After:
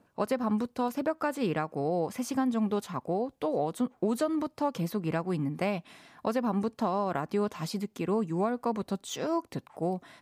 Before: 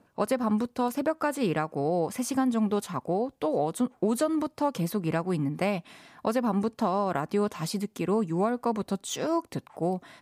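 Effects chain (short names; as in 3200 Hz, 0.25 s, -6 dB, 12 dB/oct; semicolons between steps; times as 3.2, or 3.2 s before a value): dynamic EQ 9600 Hz, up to -6 dB, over -56 dBFS, Q 1.3; gain -2.5 dB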